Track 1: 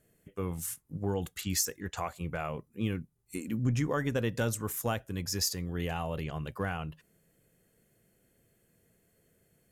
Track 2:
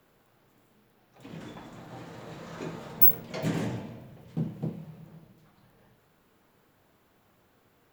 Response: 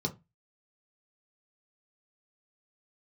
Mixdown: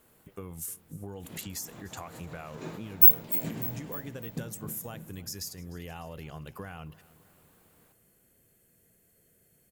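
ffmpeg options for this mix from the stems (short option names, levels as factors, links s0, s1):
-filter_complex "[0:a]highshelf=f=9800:g=6,acompressor=threshold=0.0126:ratio=10,volume=1,asplit=3[s0][s1][s2];[s1]volume=0.0891[s3];[1:a]volume=0.841,asplit=2[s4][s5];[s5]volume=0.168[s6];[s2]apad=whole_len=349342[s7];[s4][s7]sidechaincompress=threshold=0.00447:ratio=8:attack=6.7:release=107[s8];[s3][s6]amix=inputs=2:normalize=0,aecho=0:1:301|602|903|1204|1505|1806|2107|2408:1|0.53|0.281|0.149|0.0789|0.0418|0.0222|0.0117[s9];[s0][s8][s9]amix=inputs=3:normalize=0,highshelf=f=6600:g=5"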